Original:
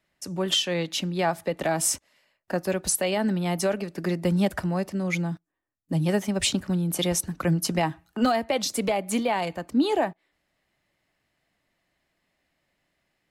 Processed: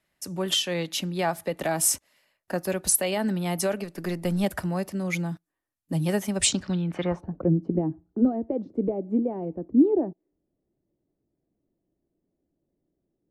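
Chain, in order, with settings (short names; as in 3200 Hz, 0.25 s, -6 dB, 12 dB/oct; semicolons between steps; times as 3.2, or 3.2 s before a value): 3.84–4.44 half-wave gain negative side -3 dB; low-pass sweep 12000 Hz -> 360 Hz, 6.34–7.52; gain -1.5 dB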